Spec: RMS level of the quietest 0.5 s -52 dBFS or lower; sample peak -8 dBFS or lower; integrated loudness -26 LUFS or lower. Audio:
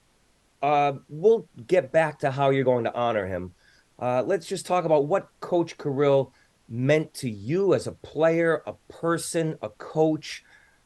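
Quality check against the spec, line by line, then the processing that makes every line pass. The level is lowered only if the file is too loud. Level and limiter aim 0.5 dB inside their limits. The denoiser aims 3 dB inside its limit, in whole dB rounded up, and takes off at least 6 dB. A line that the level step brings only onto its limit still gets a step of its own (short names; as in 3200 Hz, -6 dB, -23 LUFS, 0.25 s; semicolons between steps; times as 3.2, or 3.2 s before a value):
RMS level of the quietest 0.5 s -64 dBFS: OK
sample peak -7.5 dBFS: fail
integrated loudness -25.0 LUFS: fail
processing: gain -1.5 dB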